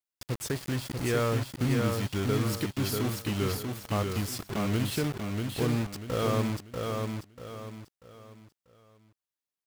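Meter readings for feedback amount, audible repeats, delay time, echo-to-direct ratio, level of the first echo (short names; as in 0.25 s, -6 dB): 35%, 4, 0.64 s, -3.5 dB, -4.0 dB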